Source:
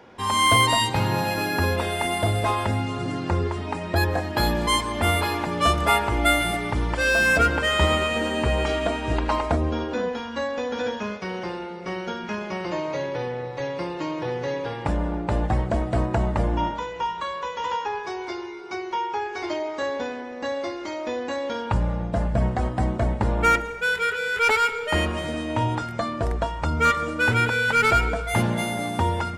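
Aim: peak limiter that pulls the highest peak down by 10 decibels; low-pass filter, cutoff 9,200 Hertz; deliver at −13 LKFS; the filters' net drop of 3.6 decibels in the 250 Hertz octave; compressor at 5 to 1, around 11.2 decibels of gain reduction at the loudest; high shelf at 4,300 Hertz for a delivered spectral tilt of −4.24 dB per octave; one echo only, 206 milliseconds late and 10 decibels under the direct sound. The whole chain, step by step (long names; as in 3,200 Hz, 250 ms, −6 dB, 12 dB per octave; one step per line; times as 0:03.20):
low-pass filter 9,200 Hz
parametric band 250 Hz −5 dB
high-shelf EQ 4,300 Hz +9 dB
downward compressor 5 to 1, threshold −27 dBFS
brickwall limiter −23.5 dBFS
single-tap delay 206 ms −10 dB
level +19 dB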